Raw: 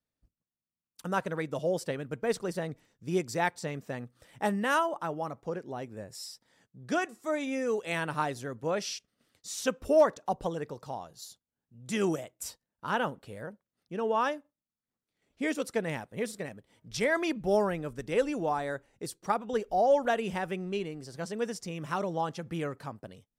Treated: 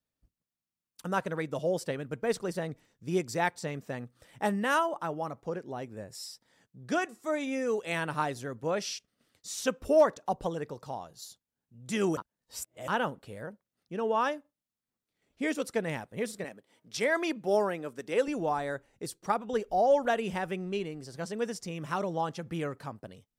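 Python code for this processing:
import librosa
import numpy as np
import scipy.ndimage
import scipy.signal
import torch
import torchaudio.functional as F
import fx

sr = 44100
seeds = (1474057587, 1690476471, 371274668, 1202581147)

y = fx.highpass(x, sr, hz=240.0, slope=12, at=(16.44, 18.28))
y = fx.edit(y, sr, fx.reverse_span(start_s=12.17, length_s=0.71), tone=tone)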